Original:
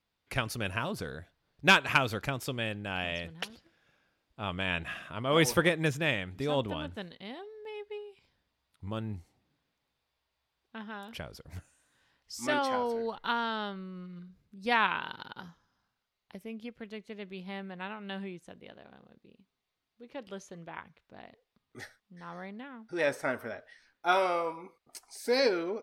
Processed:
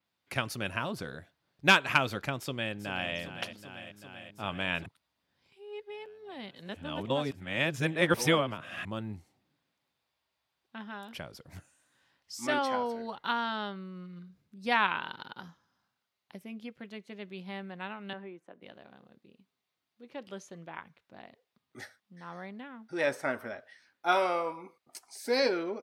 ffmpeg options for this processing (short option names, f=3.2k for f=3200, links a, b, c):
-filter_complex "[0:a]asplit=2[a][b];[b]afade=t=in:st=2.38:d=0.01,afade=t=out:st=3.13:d=0.01,aecho=0:1:390|780|1170|1560|1950|2340|2730|3120|3510|3900|4290|4680:0.281838|0.225471|0.180377|0.144301|0.115441|0.0923528|0.0738822|0.0591058|0.0472846|0.0378277|0.0302622|0.0242097[c];[a][c]amix=inputs=2:normalize=0,asettb=1/sr,asplit=3[d][e][f];[d]atrim=end=18.134[g];[e]atrim=start=18.13:end=18.62,asetpts=PTS-STARTPTS,afade=t=in:d=0.004:c=qsin,afade=t=out:st=0.486:d=0.004:c=qsin,acrossover=split=250 2100:gain=0.158 1 0.126[h][i][j];[h][i][j]amix=inputs=3:normalize=0[k];[f]atrim=start=18.616[l];[g][k]acrossfade=d=0.004:c1=hsin:c2=qsin[m];[m][l]acrossfade=d=0.004:c1=qsin:c2=hsin,asplit=3[n][o][p];[n]atrim=end=4.862[q];[o]atrim=start=4.858:end=8.852,asetpts=PTS-STARTPTS,areverse[r];[p]atrim=start=8.848[s];[q][r]acrossfade=d=0.004:c1=hsin:c2=hsin[t];[t][s]acrossfade=d=0.004:c1=hsin:c2=hsin,highpass=110,bandreject=f=450:w=12,adynamicequalizer=threshold=0.00398:dfrequency=5900:dqfactor=0.7:tfrequency=5900:tqfactor=0.7:attack=5:release=100:ratio=0.375:range=2:mode=cutabove:tftype=highshelf"